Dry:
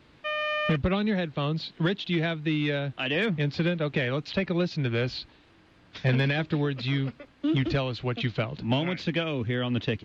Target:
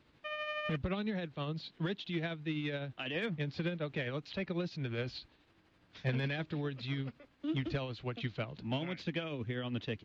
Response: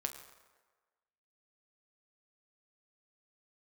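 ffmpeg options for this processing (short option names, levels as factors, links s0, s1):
-af "tremolo=f=12:d=0.38,volume=0.376"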